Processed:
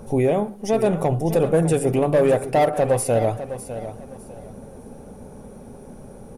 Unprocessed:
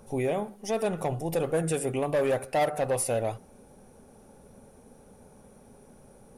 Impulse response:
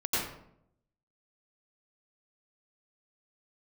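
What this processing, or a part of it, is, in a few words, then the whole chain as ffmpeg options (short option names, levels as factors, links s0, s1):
parallel compression: -filter_complex "[0:a]asplit=2[s0][s1];[s1]acompressor=threshold=0.00501:ratio=6,volume=0.596[s2];[s0][s2]amix=inputs=2:normalize=0,tiltshelf=f=870:g=4,aecho=1:1:604|1208|1812:0.251|0.0703|0.0197,volume=2"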